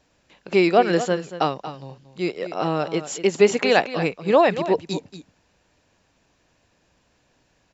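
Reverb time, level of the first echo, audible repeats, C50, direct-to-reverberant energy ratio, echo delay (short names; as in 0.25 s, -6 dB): none, -12.5 dB, 1, none, none, 0.232 s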